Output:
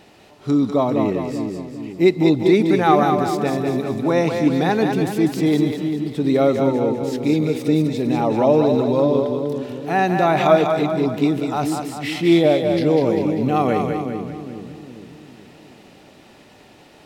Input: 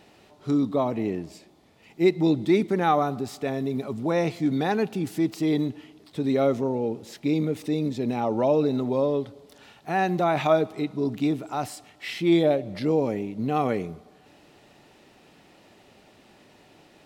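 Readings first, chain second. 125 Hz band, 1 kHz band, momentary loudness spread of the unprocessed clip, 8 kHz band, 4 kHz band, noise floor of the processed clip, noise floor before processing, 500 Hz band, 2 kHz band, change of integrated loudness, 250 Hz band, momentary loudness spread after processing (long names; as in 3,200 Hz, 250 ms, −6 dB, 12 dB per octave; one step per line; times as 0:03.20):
+7.0 dB, +7.0 dB, 10 LU, +7.0 dB, +7.0 dB, −48 dBFS, −56 dBFS, +7.0 dB, +7.0 dB, +6.5 dB, +7.0 dB, 11 LU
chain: echo with a time of its own for lows and highs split 390 Hz, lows 410 ms, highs 197 ms, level −5 dB
level +5.5 dB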